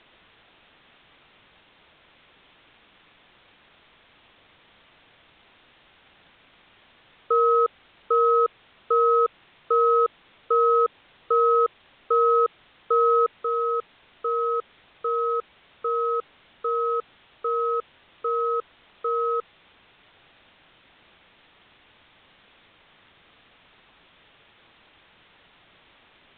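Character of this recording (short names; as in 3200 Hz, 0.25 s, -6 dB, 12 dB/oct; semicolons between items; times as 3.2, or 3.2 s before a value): a quantiser's noise floor 8-bit, dither triangular; µ-law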